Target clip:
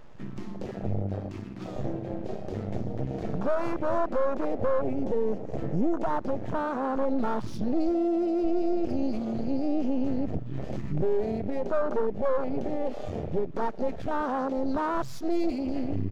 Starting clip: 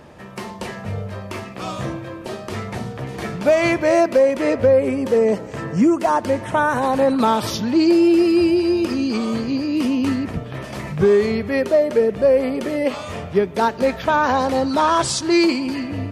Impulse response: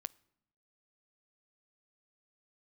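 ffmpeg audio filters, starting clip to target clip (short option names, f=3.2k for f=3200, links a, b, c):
-filter_complex "[0:a]aeval=exprs='0.562*sin(PI/2*1.58*val(0)/0.562)':c=same,alimiter=limit=-17dB:level=0:latency=1:release=355,aresample=16000,aresample=44100,aeval=exprs='max(val(0),0)':c=same,asplit=2[a][b];[b]adelay=819,lowpass=f=2k:p=1,volume=-23dB,asplit=2[c][d];[d]adelay=819,lowpass=f=2k:p=1,volume=0.5,asplit=2[e][f];[f]adelay=819,lowpass=f=2k:p=1,volume=0.5[g];[c][e][g]amix=inputs=3:normalize=0[h];[a][h]amix=inputs=2:normalize=0,afwtdn=0.0562"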